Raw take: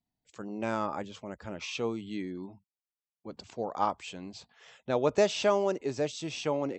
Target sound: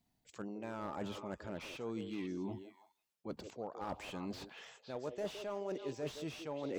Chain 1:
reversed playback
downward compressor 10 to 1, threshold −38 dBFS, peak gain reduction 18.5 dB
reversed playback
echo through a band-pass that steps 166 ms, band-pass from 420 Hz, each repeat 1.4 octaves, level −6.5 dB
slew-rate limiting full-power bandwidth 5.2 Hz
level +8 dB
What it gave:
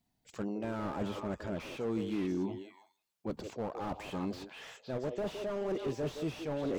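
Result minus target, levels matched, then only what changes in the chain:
downward compressor: peak gain reduction −7.5 dB
change: downward compressor 10 to 1, threshold −46.5 dBFS, peak gain reduction 26.5 dB

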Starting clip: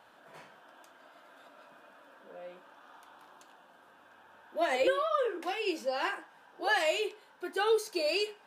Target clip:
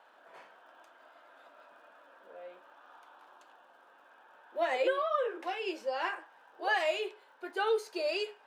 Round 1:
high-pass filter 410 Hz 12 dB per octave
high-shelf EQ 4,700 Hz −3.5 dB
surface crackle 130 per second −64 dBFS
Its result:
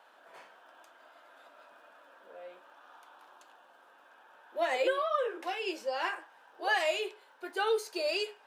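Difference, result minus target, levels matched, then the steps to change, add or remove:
8,000 Hz band +5.5 dB
change: high-shelf EQ 4,700 Hz −12 dB

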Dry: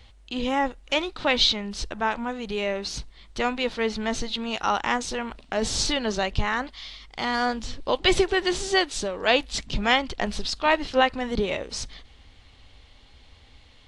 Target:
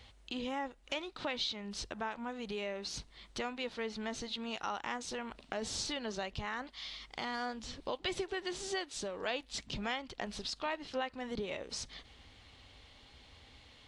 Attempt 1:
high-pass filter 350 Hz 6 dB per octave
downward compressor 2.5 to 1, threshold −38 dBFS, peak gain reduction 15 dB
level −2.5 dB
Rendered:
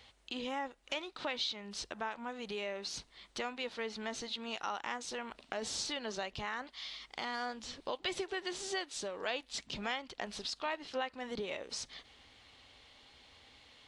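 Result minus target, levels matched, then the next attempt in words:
125 Hz band −5.0 dB
high-pass filter 94 Hz 6 dB per octave
downward compressor 2.5 to 1, threshold −38 dBFS, peak gain reduction 15.5 dB
level −2.5 dB

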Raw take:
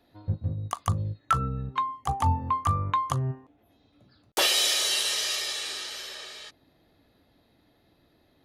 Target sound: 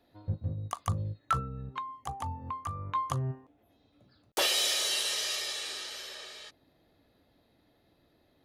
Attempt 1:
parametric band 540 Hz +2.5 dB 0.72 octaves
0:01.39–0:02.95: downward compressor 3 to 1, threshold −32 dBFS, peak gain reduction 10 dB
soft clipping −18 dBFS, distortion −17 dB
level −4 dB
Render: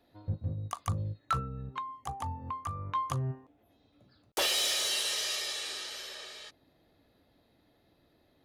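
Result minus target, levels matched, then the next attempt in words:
soft clipping: distortion +9 dB
parametric band 540 Hz +2.5 dB 0.72 octaves
0:01.39–0:02.95: downward compressor 3 to 1, threshold −32 dBFS, peak gain reduction 10 dB
soft clipping −12 dBFS, distortion −26 dB
level −4 dB

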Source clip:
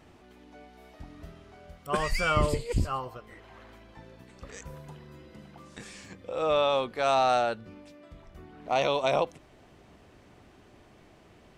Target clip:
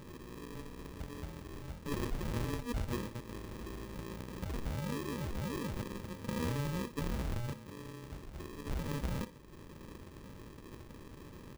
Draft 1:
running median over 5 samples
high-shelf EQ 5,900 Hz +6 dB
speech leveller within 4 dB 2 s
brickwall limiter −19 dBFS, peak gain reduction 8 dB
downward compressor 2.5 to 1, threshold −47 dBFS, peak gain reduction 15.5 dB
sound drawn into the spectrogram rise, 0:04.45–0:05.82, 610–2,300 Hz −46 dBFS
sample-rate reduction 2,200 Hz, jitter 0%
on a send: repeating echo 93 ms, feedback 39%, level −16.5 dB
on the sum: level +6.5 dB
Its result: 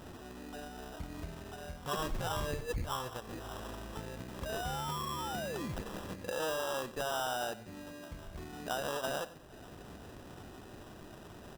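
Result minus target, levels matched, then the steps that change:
echo 34 ms late; sample-rate reduction: distortion −12 dB
change: sample-rate reduction 720 Hz, jitter 0%
change: repeating echo 59 ms, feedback 39%, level −16.5 dB

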